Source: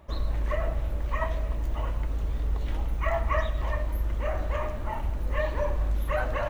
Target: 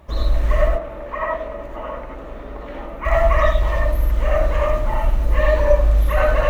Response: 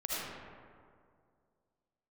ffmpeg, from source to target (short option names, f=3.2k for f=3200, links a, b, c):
-filter_complex "[0:a]asettb=1/sr,asplit=3[a][b][c];[a]atrim=end=0.684[d];[b]atrim=start=0.68:end=3.05,asetpts=PTS-STARTPTS,afade=t=in:d=0.004:c=qsin,afade=t=out:st=2.366:d=0.004:c=qsin,acrossover=split=200 2400:gain=0.112 1 0.158[e][f][g];[e][f][g]amix=inputs=3:normalize=0[h];[c]atrim=start=3.046[i];[d][h]acrossfade=d=0.004:c1=hsin:c2=qsin[j];[j][i]acrossfade=d=0.004:c1=qsin:c2=hsin[k];[1:a]atrim=start_sample=2205,atrim=end_sample=4410,asetrate=41895,aresample=44100[l];[k][l]afir=irnorm=-1:irlink=0,volume=8.5dB"